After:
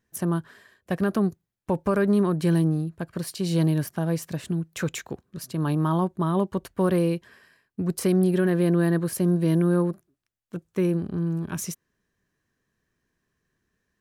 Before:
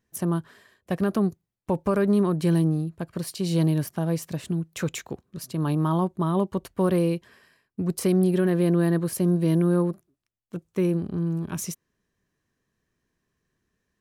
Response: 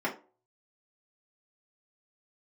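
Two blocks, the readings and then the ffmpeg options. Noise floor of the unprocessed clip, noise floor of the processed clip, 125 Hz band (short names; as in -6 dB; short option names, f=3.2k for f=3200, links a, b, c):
-80 dBFS, -79 dBFS, 0.0 dB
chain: -af "equalizer=f=1.6k:t=o:w=0.42:g=4"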